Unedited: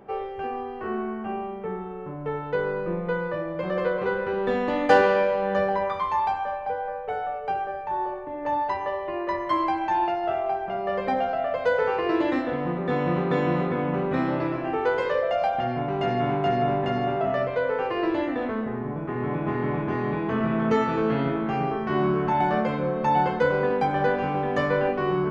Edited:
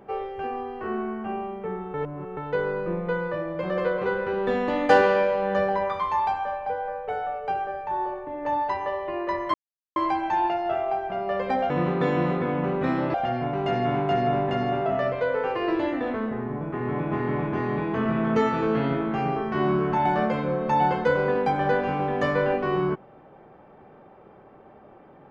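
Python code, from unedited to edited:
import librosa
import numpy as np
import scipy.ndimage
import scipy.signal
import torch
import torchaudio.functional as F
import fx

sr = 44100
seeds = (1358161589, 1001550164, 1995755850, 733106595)

y = fx.edit(x, sr, fx.reverse_span(start_s=1.94, length_s=0.43),
    fx.insert_silence(at_s=9.54, length_s=0.42),
    fx.cut(start_s=11.28, length_s=1.72),
    fx.cut(start_s=14.44, length_s=1.05), tone=tone)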